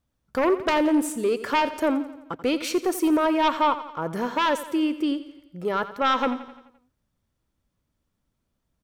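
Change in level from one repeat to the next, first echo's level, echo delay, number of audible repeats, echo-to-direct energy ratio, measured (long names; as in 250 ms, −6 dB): −5.0 dB, −14.0 dB, 86 ms, 5, −12.5 dB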